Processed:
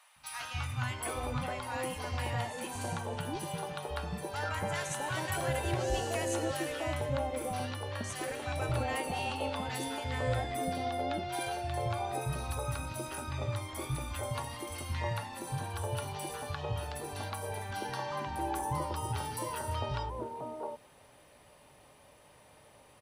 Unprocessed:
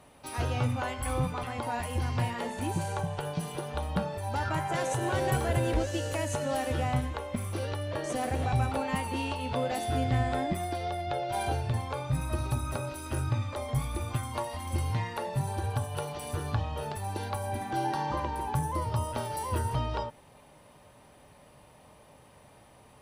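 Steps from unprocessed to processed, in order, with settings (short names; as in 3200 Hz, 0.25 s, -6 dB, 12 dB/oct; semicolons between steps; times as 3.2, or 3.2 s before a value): low shelf 310 Hz -6 dB; three bands offset in time highs, lows, mids 0.16/0.66 s, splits 200/910 Hz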